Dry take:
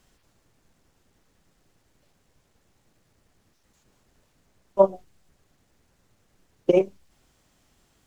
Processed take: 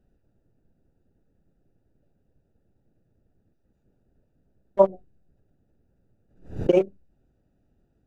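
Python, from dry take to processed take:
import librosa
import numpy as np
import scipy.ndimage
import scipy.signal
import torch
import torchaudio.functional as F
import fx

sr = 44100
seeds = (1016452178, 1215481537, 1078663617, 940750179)

y = fx.wiener(x, sr, points=41)
y = fx.pre_swell(y, sr, db_per_s=120.0, at=(4.79, 6.7))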